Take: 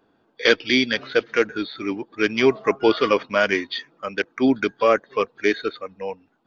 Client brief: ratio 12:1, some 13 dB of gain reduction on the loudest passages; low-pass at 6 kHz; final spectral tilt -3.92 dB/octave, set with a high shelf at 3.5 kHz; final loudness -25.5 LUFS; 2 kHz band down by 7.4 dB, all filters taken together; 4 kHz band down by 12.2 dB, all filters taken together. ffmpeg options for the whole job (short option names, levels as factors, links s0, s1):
-af "lowpass=6000,equalizer=f=2000:t=o:g=-5.5,highshelf=f=3500:g=-8.5,equalizer=f=4000:t=o:g=-8,acompressor=threshold=0.0501:ratio=12,volume=2.37"